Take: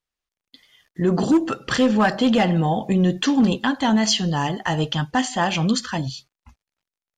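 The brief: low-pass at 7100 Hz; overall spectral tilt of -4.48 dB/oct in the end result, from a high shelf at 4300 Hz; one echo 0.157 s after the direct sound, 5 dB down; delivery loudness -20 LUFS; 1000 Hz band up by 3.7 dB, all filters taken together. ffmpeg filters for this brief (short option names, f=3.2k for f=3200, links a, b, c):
-af "lowpass=7.1k,equalizer=f=1k:t=o:g=4.5,highshelf=f=4.3k:g=8,aecho=1:1:157:0.562,volume=-2dB"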